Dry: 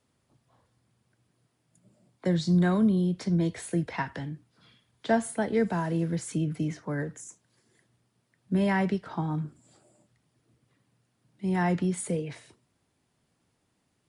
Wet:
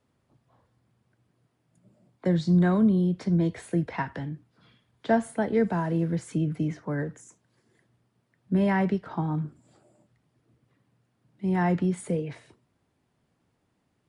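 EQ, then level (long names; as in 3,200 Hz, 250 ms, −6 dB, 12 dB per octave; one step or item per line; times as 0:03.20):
high-shelf EQ 3,400 Hz −10.5 dB
+2.0 dB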